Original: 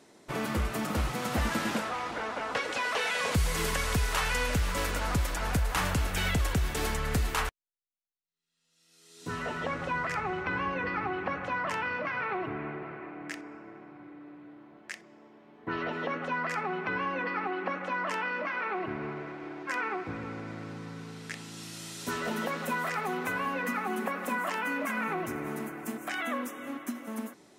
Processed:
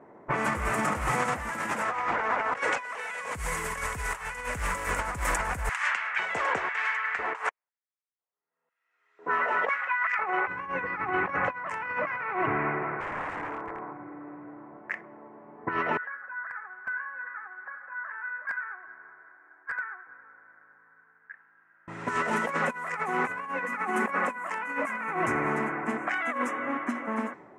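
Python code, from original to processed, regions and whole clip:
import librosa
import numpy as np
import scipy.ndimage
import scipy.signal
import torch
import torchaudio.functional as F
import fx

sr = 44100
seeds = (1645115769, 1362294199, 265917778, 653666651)

y = fx.chain(x, sr, fx.air_absorb(metres=80.0),
    fx.filter_lfo_highpass(shape='square', hz=1.0, low_hz=470.0, high_hz=1800.0, q=1.0), at=(5.69, 10.48))
y = fx.chain(y, sr, fx.peak_eq(hz=980.0, db=7.0, octaves=0.86),
    fx.small_body(hz=(460.0, 3000.0), ring_ms=90, db=9),
    fx.overflow_wrap(gain_db=36.5), at=(13.0, 13.93))
y = fx.chain(y, sr, fx.bandpass_q(hz=1600.0, q=15.0),
    fx.overflow_wrap(gain_db=34.0), at=(15.97, 21.88))
y = fx.env_lowpass(y, sr, base_hz=870.0, full_db=-26.5)
y = fx.graphic_eq_10(y, sr, hz=(125, 500, 1000, 2000, 4000, 8000), db=(4, 4, 9, 11, -10, 10))
y = fx.over_compress(y, sr, threshold_db=-27.0, ratio=-0.5)
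y = y * librosa.db_to_amplitude(-1.5)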